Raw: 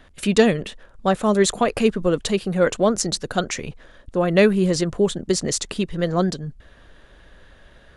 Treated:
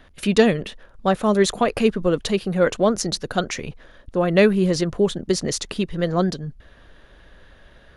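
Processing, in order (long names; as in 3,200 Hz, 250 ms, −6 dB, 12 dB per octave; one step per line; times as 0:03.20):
parametric band 7,800 Hz −7.5 dB 0.37 octaves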